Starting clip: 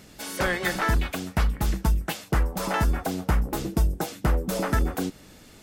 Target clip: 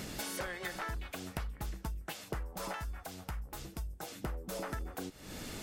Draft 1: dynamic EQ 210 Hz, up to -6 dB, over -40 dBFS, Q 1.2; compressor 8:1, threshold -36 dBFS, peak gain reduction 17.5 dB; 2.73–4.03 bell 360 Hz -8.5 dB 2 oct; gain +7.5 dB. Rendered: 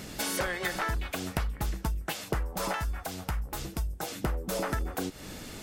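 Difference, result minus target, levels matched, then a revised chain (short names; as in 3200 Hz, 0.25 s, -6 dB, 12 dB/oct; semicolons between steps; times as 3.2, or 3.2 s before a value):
compressor: peak gain reduction -8.5 dB
dynamic EQ 210 Hz, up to -6 dB, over -40 dBFS, Q 1.2; compressor 8:1, threshold -45.5 dBFS, peak gain reduction 26 dB; 2.73–4.03 bell 360 Hz -8.5 dB 2 oct; gain +7.5 dB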